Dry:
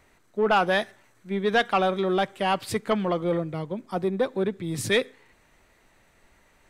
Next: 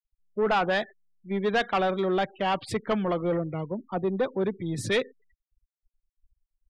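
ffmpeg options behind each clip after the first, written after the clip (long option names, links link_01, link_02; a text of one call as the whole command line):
ffmpeg -i in.wav -af "afftfilt=real='re*gte(hypot(re,im),0.0112)':imag='im*gte(hypot(re,im),0.0112)':win_size=1024:overlap=0.75,asoftclip=type=tanh:threshold=-17.5dB,highshelf=frequency=8600:gain=-11" out.wav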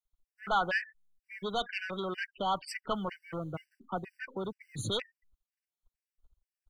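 ffmpeg -i in.wav -filter_complex "[0:a]acrossover=split=120|830[link_01][link_02][link_03];[link_01]acrusher=bits=6:mode=log:mix=0:aa=0.000001[link_04];[link_02]acompressor=threshold=-36dB:ratio=12[link_05];[link_04][link_05][link_03]amix=inputs=3:normalize=0,afftfilt=real='re*gt(sin(2*PI*2.1*pts/sr)*(1-2*mod(floor(b*sr/1024/1500),2)),0)':imag='im*gt(sin(2*PI*2.1*pts/sr)*(1-2*mod(floor(b*sr/1024/1500),2)),0)':win_size=1024:overlap=0.75" out.wav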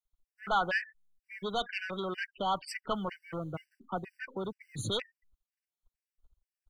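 ffmpeg -i in.wav -af anull out.wav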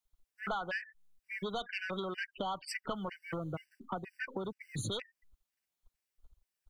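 ffmpeg -i in.wav -af "acompressor=threshold=-40dB:ratio=6,volume=5dB" out.wav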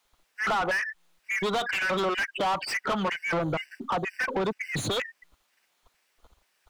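ffmpeg -i in.wav -filter_complex "[0:a]asplit=2[link_01][link_02];[link_02]highpass=frequency=720:poles=1,volume=28dB,asoftclip=type=tanh:threshold=-21.5dB[link_03];[link_01][link_03]amix=inputs=2:normalize=0,lowpass=frequency=2400:poles=1,volume=-6dB,volume=3dB" out.wav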